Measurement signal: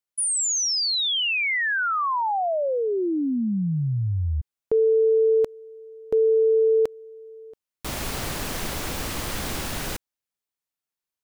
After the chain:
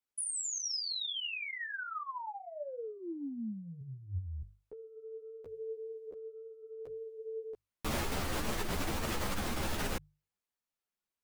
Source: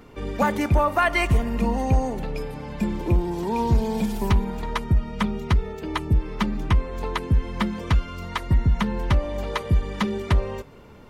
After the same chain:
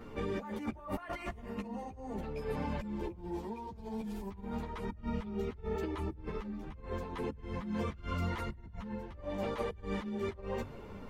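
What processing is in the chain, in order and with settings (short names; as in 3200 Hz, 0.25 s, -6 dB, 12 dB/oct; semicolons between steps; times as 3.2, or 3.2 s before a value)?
high shelf 2700 Hz -6.5 dB; notches 50/100/150 Hz; negative-ratio compressor -33 dBFS, ratio -1; ensemble effect; gain -4 dB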